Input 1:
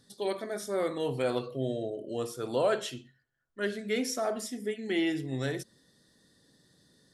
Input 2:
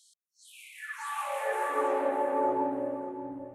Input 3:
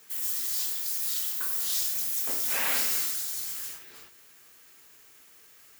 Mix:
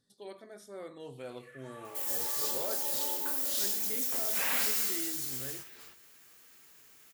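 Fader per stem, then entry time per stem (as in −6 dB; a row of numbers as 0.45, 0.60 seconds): −14.0, −15.5, −3.0 decibels; 0.00, 0.65, 1.85 seconds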